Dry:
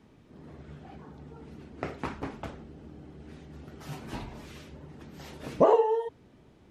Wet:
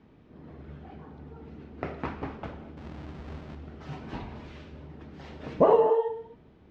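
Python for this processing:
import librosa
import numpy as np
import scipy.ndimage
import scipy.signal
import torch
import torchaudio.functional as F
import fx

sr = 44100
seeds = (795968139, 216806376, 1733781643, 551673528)

y = fx.halfwave_hold(x, sr, at=(2.77, 3.55))
y = fx.air_absorb(y, sr, metres=190.0)
y = fx.rev_gated(y, sr, seeds[0], gate_ms=280, shape='flat', drr_db=8.5)
y = F.gain(torch.from_numpy(y), 1.0).numpy()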